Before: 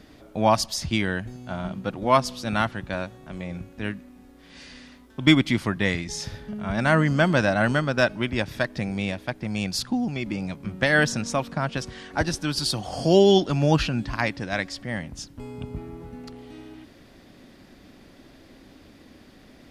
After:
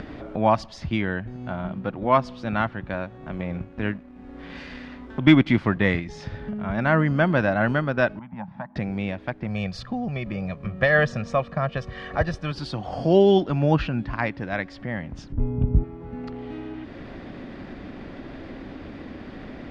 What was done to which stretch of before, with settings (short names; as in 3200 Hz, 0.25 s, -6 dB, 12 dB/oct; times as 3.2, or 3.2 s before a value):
3.39–6 sample leveller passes 1
8.19–8.76 double band-pass 400 Hz, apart 2.2 oct
9.48–12.52 comb 1.7 ms
15.32–15.84 tilt -4.5 dB/oct
whole clip: upward compressor, threshold -25 dBFS; LPF 2300 Hz 12 dB/oct